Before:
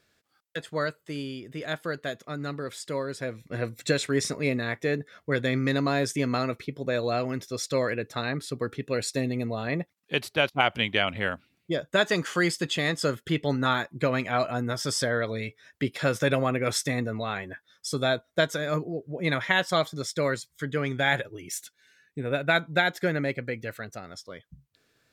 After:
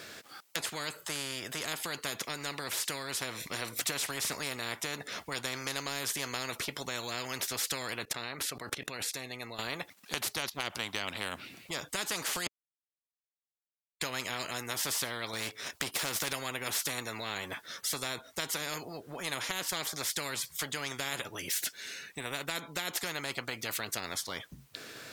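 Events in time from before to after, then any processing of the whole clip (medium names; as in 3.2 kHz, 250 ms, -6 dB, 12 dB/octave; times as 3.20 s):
8.05–9.59 s: level held to a coarse grid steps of 23 dB
12.47–14.01 s: mute
15.33–16.33 s: waveshaping leveller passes 1
whole clip: high-pass 260 Hz 6 dB/octave; compression 2:1, threshold -36 dBFS; spectrum-flattening compressor 4:1; trim +2 dB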